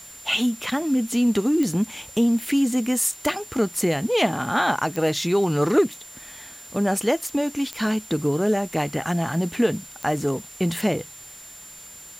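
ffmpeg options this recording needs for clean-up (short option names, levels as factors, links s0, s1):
-af "adeclick=t=4,bandreject=f=7200:w=30,afwtdn=0.005"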